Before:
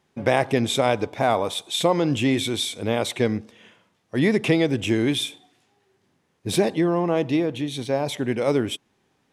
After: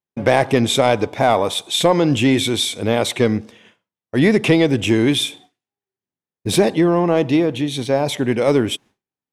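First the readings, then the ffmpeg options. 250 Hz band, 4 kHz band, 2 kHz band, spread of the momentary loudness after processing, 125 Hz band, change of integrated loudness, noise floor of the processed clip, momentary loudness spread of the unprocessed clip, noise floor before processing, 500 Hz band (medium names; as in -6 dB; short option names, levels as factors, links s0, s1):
+6.0 dB, +6.0 dB, +5.5 dB, 5 LU, +5.5 dB, +5.5 dB, under -85 dBFS, 6 LU, -69 dBFS, +5.5 dB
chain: -af "agate=range=0.0224:threshold=0.00631:ratio=3:detection=peak,acontrast=59"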